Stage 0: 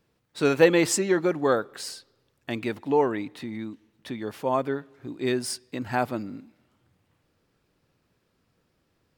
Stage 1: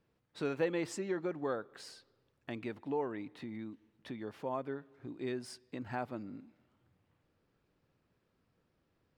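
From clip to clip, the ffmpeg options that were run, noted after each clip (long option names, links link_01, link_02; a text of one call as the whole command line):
ffmpeg -i in.wav -af "acompressor=threshold=-40dB:ratio=1.5,lowpass=frequency=2800:poles=1,volume=-5.5dB" out.wav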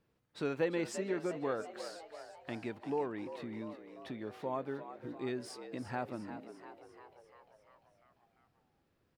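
ffmpeg -i in.wav -filter_complex "[0:a]asplit=8[link_01][link_02][link_03][link_04][link_05][link_06][link_07][link_08];[link_02]adelay=347,afreqshift=79,volume=-11.5dB[link_09];[link_03]adelay=694,afreqshift=158,volume=-15.8dB[link_10];[link_04]adelay=1041,afreqshift=237,volume=-20.1dB[link_11];[link_05]adelay=1388,afreqshift=316,volume=-24.4dB[link_12];[link_06]adelay=1735,afreqshift=395,volume=-28.7dB[link_13];[link_07]adelay=2082,afreqshift=474,volume=-33dB[link_14];[link_08]adelay=2429,afreqshift=553,volume=-37.3dB[link_15];[link_01][link_09][link_10][link_11][link_12][link_13][link_14][link_15]amix=inputs=8:normalize=0" out.wav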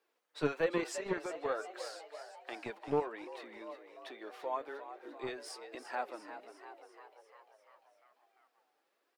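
ffmpeg -i in.wav -filter_complex "[0:a]flanger=delay=2.5:depth=4.3:regen=45:speed=1.2:shape=sinusoidal,acrossover=split=390|780[link_01][link_02][link_03];[link_01]acrusher=bits=5:mix=0:aa=0.5[link_04];[link_04][link_02][link_03]amix=inputs=3:normalize=0,volume=6dB" out.wav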